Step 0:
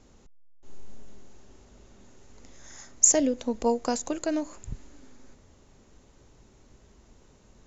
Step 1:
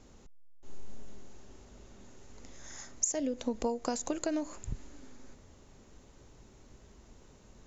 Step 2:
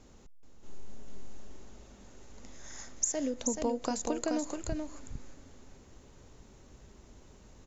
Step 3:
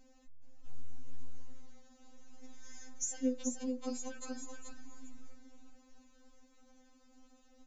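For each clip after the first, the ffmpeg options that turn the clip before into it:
-af "acompressor=threshold=0.0398:ratio=12"
-af "aecho=1:1:430:0.562"
-af "afftfilt=real='re*3.46*eq(mod(b,12),0)':imag='im*3.46*eq(mod(b,12),0)':win_size=2048:overlap=0.75,volume=0.562"

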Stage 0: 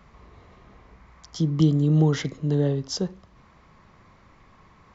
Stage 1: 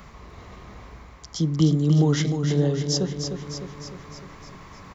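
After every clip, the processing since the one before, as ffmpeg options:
-af "highshelf=f=5900:g=10.5,areverse,acompressor=mode=upward:threshold=0.0178:ratio=2.5,areverse,aecho=1:1:304|608|912|1216|1520|1824|2128|2432:0.447|0.264|0.155|0.0917|0.0541|0.0319|0.0188|0.0111"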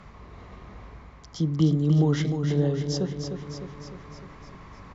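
-af "aeval=exprs='val(0)+0.00355*(sin(2*PI*50*n/s)+sin(2*PI*2*50*n/s)/2+sin(2*PI*3*50*n/s)/3+sin(2*PI*4*50*n/s)/4+sin(2*PI*5*50*n/s)/5)':c=same,aemphasis=mode=reproduction:type=50fm,volume=0.75"

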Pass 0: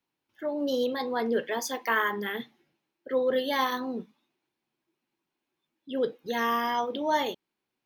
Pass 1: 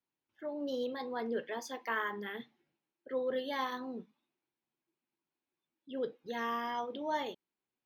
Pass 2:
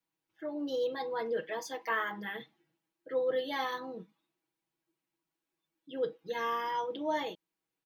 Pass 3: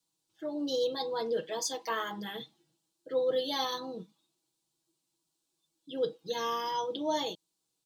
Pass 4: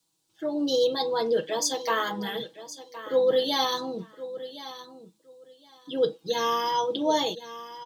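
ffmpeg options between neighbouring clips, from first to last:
-af "highshelf=f=7200:g=-10.5,volume=0.376"
-af "aecho=1:1:6.2:0.88"
-af "equalizer=f=125:t=o:w=1:g=3,equalizer=f=2000:t=o:w=1:g=-11,equalizer=f=4000:t=o:w=1:g=9,equalizer=f=8000:t=o:w=1:g=11,volume=1.26"
-af "aecho=1:1:1066|2132:0.188|0.0339,volume=2.24"

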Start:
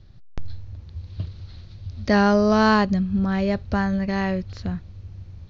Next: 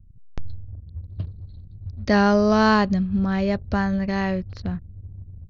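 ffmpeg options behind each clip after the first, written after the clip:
-af "anlmdn=0.158"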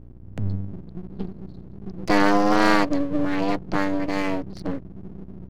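-af "afreqshift=96,aeval=exprs='val(0)+0.00708*(sin(2*PI*60*n/s)+sin(2*PI*2*60*n/s)/2+sin(2*PI*3*60*n/s)/3+sin(2*PI*4*60*n/s)/4+sin(2*PI*5*60*n/s)/5)':c=same,aeval=exprs='max(val(0),0)':c=same,volume=1.41"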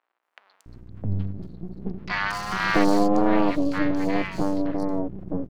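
-filter_complex "[0:a]acrossover=split=1000|4600[s0][s1][s2];[s2]adelay=230[s3];[s0]adelay=660[s4];[s4][s1][s3]amix=inputs=3:normalize=0"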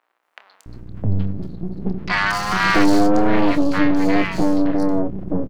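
-filter_complex "[0:a]asoftclip=type=tanh:threshold=0.188,asplit=2[s0][s1];[s1]adelay=27,volume=0.266[s2];[s0][s2]amix=inputs=2:normalize=0,volume=2.51"

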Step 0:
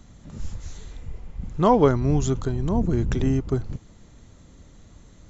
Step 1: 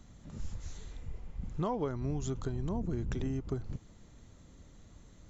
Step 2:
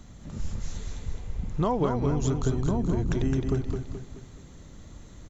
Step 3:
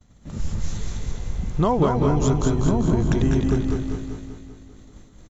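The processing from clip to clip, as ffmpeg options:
-af "acompressor=threshold=0.0631:ratio=6,volume=0.473"
-af "aecho=1:1:214|428|642|856|1070:0.562|0.242|0.104|0.0447|0.0192,volume=2.37"
-af "agate=range=0.0224:threshold=0.0141:ratio=3:detection=peak,aecho=1:1:195|390|585|780|975|1170|1365|1560:0.447|0.264|0.155|0.0917|0.0541|0.0319|0.0188|0.0111,volume=1.88"

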